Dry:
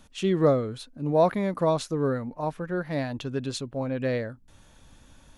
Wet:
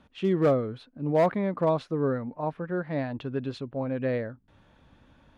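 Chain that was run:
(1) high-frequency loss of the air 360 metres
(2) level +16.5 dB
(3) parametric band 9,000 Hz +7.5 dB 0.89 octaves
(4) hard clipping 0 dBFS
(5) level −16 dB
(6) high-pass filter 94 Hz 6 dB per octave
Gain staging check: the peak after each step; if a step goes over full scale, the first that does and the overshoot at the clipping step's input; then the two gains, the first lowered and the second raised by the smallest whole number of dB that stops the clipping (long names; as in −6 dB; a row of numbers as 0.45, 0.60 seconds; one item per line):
−10.5, +6.0, +6.0, 0.0, −16.0, −14.0 dBFS
step 2, 6.0 dB
step 2 +10.5 dB, step 5 −10 dB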